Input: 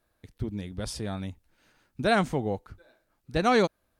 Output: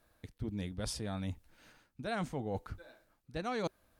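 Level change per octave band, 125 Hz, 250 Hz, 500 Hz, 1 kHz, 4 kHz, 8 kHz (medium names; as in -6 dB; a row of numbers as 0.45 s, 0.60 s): -6.5 dB, -9.5 dB, -12.5 dB, -13.0 dB, -9.5 dB, -4.5 dB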